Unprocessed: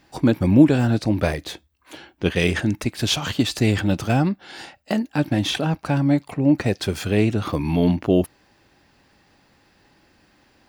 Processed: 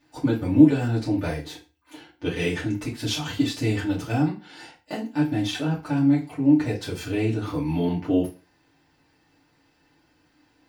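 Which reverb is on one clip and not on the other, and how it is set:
feedback delay network reverb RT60 0.32 s, low-frequency decay 1×, high-frequency decay 0.9×, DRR −7 dB
level −13.5 dB

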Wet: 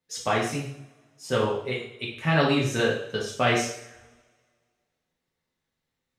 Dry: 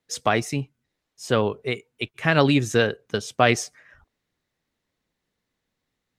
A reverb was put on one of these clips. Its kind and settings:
coupled-rooms reverb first 0.62 s, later 1.9 s, from −23 dB, DRR −5 dB
level −8.5 dB

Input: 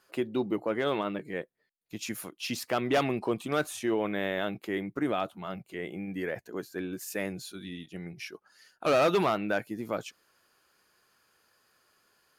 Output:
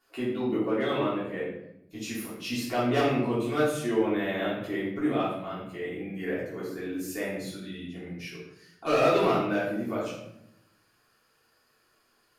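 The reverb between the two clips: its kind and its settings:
rectangular room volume 220 cubic metres, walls mixed, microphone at 3.3 metres
level −9 dB

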